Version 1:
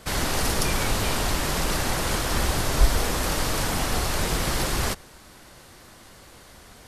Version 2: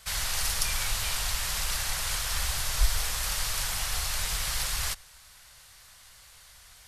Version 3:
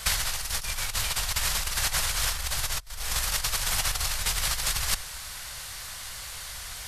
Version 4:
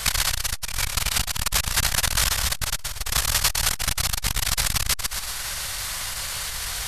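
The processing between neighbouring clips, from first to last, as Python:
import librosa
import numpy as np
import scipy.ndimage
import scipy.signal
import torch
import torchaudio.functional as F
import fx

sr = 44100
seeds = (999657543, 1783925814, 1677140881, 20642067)

y1 = fx.tone_stack(x, sr, knobs='10-0-10')
y2 = fx.over_compress(y1, sr, threshold_db=-34.0, ratio=-0.5)
y2 = F.gain(torch.from_numpy(y2), 7.5).numpy()
y3 = fx.echo_feedback(y2, sr, ms=125, feedback_pct=40, wet_db=-5.0)
y3 = fx.room_shoebox(y3, sr, seeds[0], volume_m3=590.0, walls='furnished', distance_m=0.32)
y3 = fx.transformer_sat(y3, sr, knee_hz=450.0)
y3 = F.gain(torch.from_numpy(y3), 8.0).numpy()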